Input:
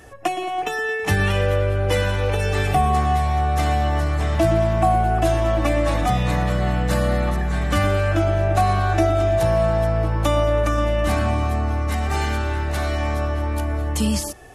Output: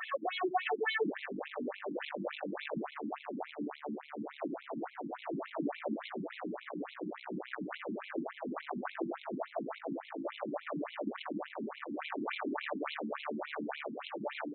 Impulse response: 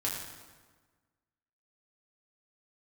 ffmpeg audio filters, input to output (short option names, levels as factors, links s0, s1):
-filter_complex "[0:a]asplit=2[s0][s1];[s1]aecho=0:1:790|1580|2370|3160:0.447|0.147|0.0486|0.0161[s2];[s0][s2]amix=inputs=2:normalize=0,acrossover=split=270[s3][s4];[s4]acompressor=threshold=0.02:ratio=6[s5];[s3][s5]amix=inputs=2:normalize=0,alimiter=limit=0.119:level=0:latency=1:release=149,acompressor=threshold=0.0355:ratio=3,aeval=exprs='(tanh(79.4*val(0)+0.5)-tanh(0.5))/79.4':c=same,bass=f=250:g=-4,treble=f=4000:g=4,afftfilt=real='re*between(b*sr/1024,240*pow(3000/240,0.5+0.5*sin(2*PI*3.5*pts/sr))/1.41,240*pow(3000/240,0.5+0.5*sin(2*PI*3.5*pts/sr))*1.41)':imag='im*between(b*sr/1024,240*pow(3000/240,0.5+0.5*sin(2*PI*3.5*pts/sr))/1.41,240*pow(3000/240,0.5+0.5*sin(2*PI*3.5*pts/sr))*1.41)':win_size=1024:overlap=0.75,volume=5.96"